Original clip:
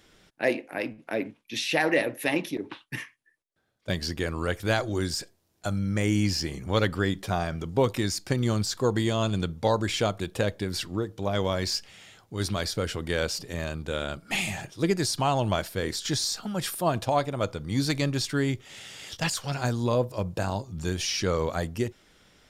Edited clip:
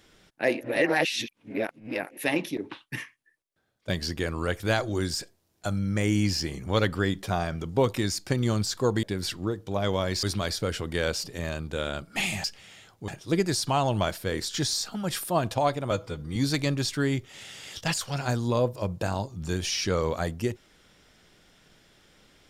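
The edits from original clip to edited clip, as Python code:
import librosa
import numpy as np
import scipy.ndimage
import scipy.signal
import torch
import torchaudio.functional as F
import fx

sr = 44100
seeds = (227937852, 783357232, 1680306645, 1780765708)

y = fx.edit(x, sr, fx.reverse_span(start_s=0.61, length_s=1.56),
    fx.cut(start_s=9.03, length_s=1.51),
    fx.move(start_s=11.74, length_s=0.64, to_s=14.59),
    fx.stretch_span(start_s=17.42, length_s=0.3, factor=1.5), tone=tone)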